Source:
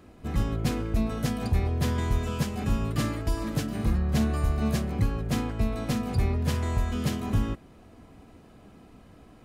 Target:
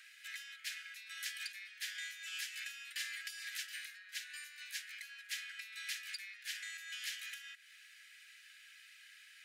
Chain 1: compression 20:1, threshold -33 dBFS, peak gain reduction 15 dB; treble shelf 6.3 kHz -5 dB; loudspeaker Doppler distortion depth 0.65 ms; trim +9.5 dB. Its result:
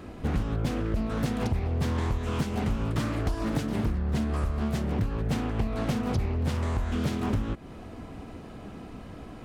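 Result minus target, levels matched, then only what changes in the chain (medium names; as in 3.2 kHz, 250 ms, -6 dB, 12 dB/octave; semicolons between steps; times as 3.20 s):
2 kHz band -13.0 dB
add after compression: steep high-pass 1.6 kHz 72 dB/octave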